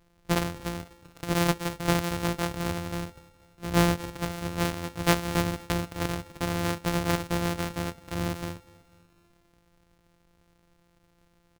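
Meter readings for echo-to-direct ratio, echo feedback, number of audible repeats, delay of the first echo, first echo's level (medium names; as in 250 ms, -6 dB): -20.5 dB, 53%, 3, 246 ms, -22.0 dB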